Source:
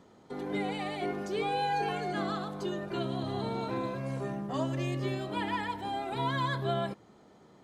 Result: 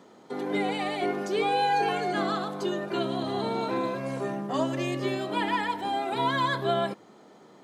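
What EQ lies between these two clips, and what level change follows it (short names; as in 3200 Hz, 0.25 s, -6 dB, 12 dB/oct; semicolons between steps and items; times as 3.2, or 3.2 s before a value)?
HPF 210 Hz 12 dB/oct; +6.0 dB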